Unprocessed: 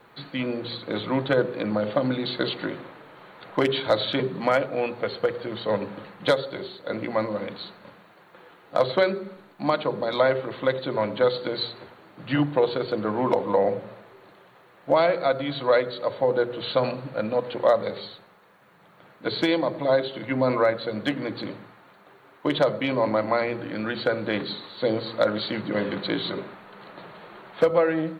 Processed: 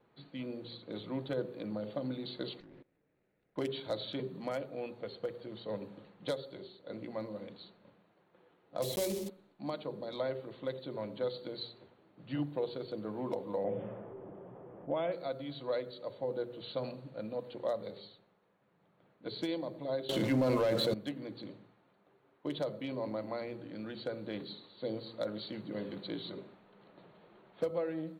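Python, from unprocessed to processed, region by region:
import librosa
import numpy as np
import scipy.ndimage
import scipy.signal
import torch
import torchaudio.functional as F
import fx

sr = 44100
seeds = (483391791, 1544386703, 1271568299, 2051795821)

y = fx.chain(x, sr, fx.lower_of_two(delay_ms=0.47),
    fx.lowpass(hz=3100.0, slope=12),
    fx.level_steps(step_db=21), at=(2.6, 3.56))
y = fx.chain(y, sr, fx.block_float(bits=3),
    fx.peak_eq(hz=1400.0, db=-13.5, octaves=0.35),
    fx.env_flatten(amount_pct=50), at=(8.82, 9.3))
y = fx.chain(y, sr, fx.env_lowpass(base_hz=680.0, full_db=-19.5),
    fx.brickwall_lowpass(high_hz=3600.0),
    fx.env_flatten(amount_pct=50), at=(13.64, 15.12))
y = fx.chain(y, sr, fx.hum_notches(base_hz=50, count=8),
    fx.leveller(passes=2),
    fx.env_flatten(amount_pct=70), at=(20.09, 20.94))
y = fx.peak_eq(y, sr, hz=1500.0, db=-14.5, octaves=2.8)
y = fx.env_lowpass(y, sr, base_hz=2700.0, full_db=-28.0)
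y = fx.low_shelf(y, sr, hz=240.0, db=-6.5)
y = y * librosa.db_to_amplitude(-6.5)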